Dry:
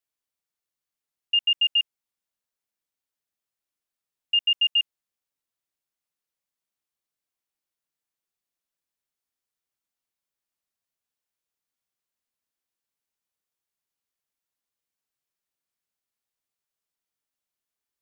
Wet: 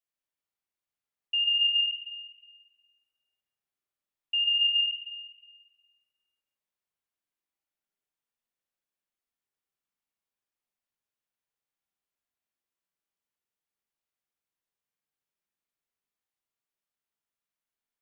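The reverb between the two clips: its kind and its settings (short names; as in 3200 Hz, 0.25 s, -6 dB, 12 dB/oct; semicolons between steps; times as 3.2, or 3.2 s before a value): spring tank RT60 1.5 s, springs 39/44 ms, chirp 70 ms, DRR -3.5 dB; gain -7 dB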